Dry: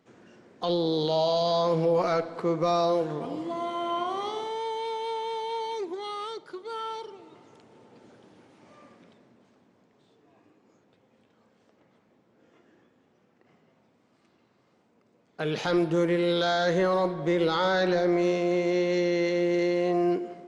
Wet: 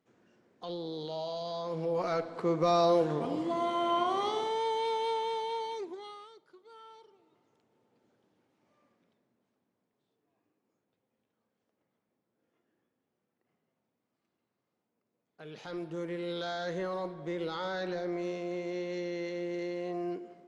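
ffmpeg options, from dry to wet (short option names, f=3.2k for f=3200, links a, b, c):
-af "volume=7.5dB,afade=t=in:st=1.65:d=1.43:silence=0.223872,afade=t=out:st=5.02:d=0.96:silence=0.354813,afade=t=out:st=5.98:d=0.31:silence=0.334965,afade=t=in:st=15.44:d=0.93:silence=0.446684"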